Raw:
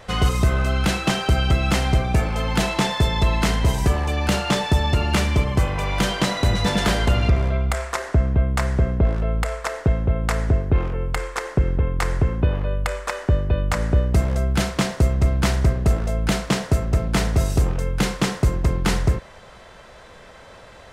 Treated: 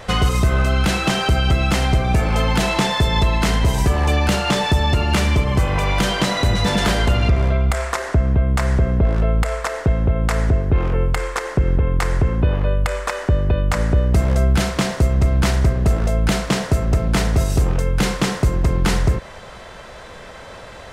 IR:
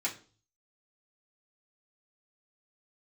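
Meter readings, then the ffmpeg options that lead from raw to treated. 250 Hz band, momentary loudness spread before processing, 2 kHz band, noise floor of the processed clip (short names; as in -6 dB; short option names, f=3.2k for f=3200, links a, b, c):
+2.5 dB, 4 LU, +3.0 dB, -37 dBFS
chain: -af "alimiter=limit=-15.5dB:level=0:latency=1:release=174,volume=7dB"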